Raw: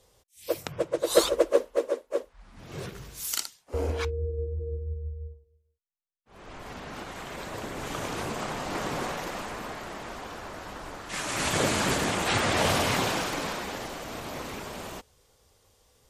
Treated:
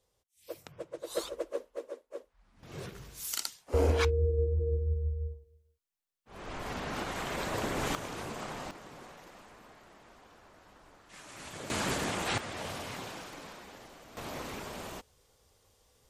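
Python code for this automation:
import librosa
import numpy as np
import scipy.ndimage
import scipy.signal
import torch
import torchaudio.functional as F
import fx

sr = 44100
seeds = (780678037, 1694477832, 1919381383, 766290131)

y = fx.gain(x, sr, db=fx.steps((0.0, -14.0), (2.63, -5.0), (3.45, 3.0), (7.95, -7.0), (8.71, -18.0), (11.7, -6.0), (12.38, -15.0), (14.17, -3.5)))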